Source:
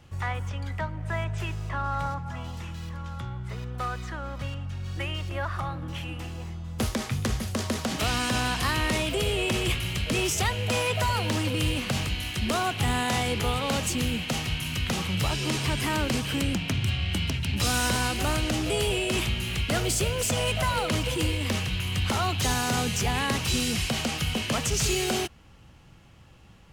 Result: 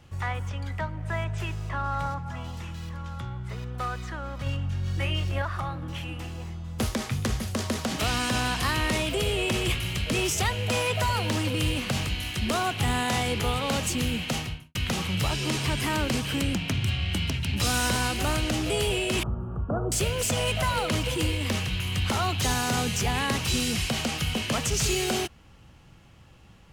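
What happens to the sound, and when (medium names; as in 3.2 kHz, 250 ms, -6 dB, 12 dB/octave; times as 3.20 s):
4.44–5.42 s: doubling 22 ms -2 dB
14.34–14.75 s: studio fade out
19.23–19.92 s: elliptic low-pass 1.3 kHz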